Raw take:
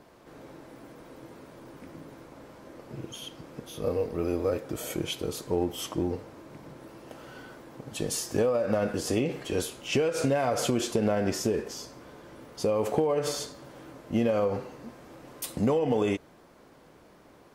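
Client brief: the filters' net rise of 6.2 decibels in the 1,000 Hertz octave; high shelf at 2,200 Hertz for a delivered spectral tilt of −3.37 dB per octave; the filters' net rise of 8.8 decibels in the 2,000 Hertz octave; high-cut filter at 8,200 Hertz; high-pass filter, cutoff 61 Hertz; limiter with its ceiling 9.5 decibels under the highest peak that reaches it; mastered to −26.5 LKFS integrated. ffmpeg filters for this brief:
ffmpeg -i in.wav -af "highpass=61,lowpass=8200,equalizer=frequency=1000:width_type=o:gain=6,equalizer=frequency=2000:width_type=o:gain=5.5,highshelf=frequency=2200:gain=7.5,volume=3dB,alimiter=limit=-15dB:level=0:latency=1" out.wav

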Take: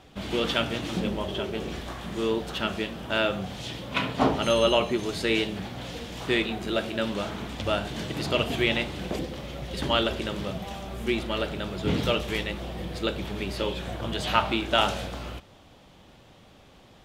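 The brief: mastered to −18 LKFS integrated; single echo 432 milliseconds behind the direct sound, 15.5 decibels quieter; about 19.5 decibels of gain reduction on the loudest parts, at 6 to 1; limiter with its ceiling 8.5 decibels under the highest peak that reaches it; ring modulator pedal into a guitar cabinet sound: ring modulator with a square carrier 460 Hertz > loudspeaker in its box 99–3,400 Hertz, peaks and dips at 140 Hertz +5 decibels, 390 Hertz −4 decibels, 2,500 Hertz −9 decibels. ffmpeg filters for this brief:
ffmpeg -i in.wav -af "acompressor=threshold=-39dB:ratio=6,alimiter=level_in=7.5dB:limit=-24dB:level=0:latency=1,volume=-7.5dB,aecho=1:1:432:0.168,aeval=exprs='val(0)*sgn(sin(2*PI*460*n/s))':channel_layout=same,highpass=99,equalizer=frequency=140:width_type=q:width=4:gain=5,equalizer=frequency=390:width_type=q:width=4:gain=-4,equalizer=frequency=2500:width_type=q:width=4:gain=-9,lowpass=frequency=3400:width=0.5412,lowpass=frequency=3400:width=1.3066,volume=26dB" out.wav

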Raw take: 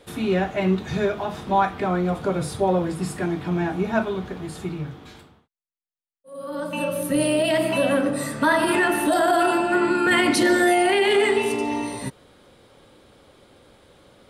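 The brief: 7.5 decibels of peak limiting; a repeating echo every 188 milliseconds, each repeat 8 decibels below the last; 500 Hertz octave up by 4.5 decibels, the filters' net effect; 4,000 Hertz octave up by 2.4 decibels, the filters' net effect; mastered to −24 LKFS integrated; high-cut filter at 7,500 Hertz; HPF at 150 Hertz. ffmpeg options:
ffmpeg -i in.wav -af "highpass=150,lowpass=7500,equalizer=frequency=500:width_type=o:gain=6.5,equalizer=frequency=4000:width_type=o:gain=3.5,alimiter=limit=-12.5dB:level=0:latency=1,aecho=1:1:188|376|564|752|940:0.398|0.159|0.0637|0.0255|0.0102,volume=-3dB" out.wav

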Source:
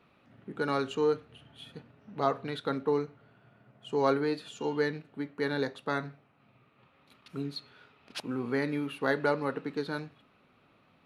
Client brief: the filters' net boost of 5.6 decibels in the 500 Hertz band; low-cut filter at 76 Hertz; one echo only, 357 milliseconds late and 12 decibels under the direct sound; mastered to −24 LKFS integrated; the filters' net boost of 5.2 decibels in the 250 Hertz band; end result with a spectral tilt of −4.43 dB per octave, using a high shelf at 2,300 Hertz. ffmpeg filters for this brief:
ffmpeg -i in.wav -af "highpass=76,equalizer=frequency=250:width_type=o:gain=4.5,equalizer=frequency=500:width_type=o:gain=5,highshelf=frequency=2300:gain=4.5,aecho=1:1:357:0.251,volume=3.5dB" out.wav

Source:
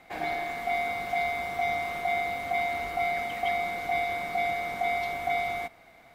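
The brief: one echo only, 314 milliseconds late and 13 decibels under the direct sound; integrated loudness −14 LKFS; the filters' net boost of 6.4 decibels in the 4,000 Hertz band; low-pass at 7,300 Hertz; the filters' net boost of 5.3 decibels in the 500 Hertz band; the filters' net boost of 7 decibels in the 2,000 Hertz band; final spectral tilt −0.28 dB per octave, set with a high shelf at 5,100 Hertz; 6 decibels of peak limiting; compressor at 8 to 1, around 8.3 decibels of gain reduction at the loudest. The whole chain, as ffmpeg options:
ffmpeg -i in.wav -af "lowpass=7300,equalizer=frequency=500:width_type=o:gain=9,equalizer=frequency=2000:width_type=o:gain=6,equalizer=frequency=4000:width_type=o:gain=8,highshelf=frequency=5100:gain=-6,acompressor=threshold=-27dB:ratio=8,alimiter=level_in=0.5dB:limit=-24dB:level=0:latency=1,volume=-0.5dB,aecho=1:1:314:0.224,volume=18dB" out.wav

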